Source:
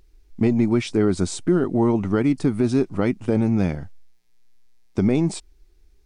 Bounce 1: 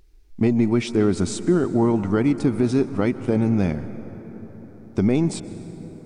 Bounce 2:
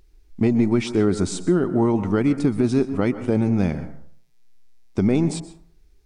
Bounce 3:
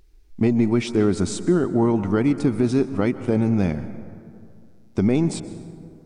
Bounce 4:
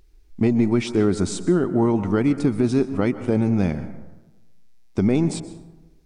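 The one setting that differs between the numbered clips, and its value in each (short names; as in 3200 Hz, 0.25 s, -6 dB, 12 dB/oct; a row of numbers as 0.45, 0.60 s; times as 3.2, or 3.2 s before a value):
plate-style reverb, RT60: 5.3, 0.54, 2.4, 1.1 s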